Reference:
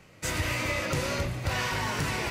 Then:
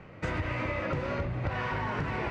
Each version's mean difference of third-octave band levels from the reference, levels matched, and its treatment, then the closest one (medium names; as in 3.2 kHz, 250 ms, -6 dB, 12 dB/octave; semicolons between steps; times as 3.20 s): 8.5 dB: low-pass 1.8 kHz 12 dB/octave; compression 6:1, threshold -36 dBFS, peak gain reduction 11 dB; trim +7 dB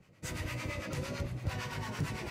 3.5 dB: peaking EQ 140 Hz +7.5 dB 2.9 oct; harmonic tremolo 8.9 Hz, depth 70%, crossover 680 Hz; trim -8.5 dB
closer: second